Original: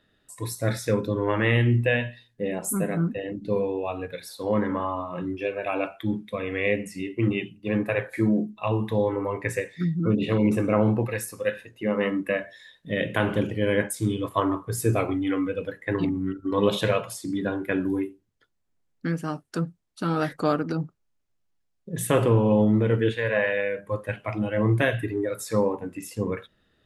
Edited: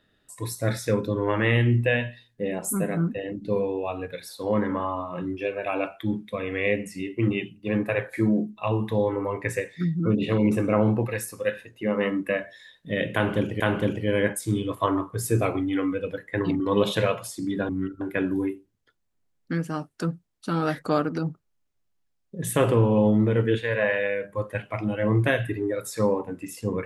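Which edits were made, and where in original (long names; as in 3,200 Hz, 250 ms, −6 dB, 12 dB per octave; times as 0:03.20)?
0:13.14–0:13.60: repeat, 2 plays
0:16.14–0:16.46: move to 0:17.55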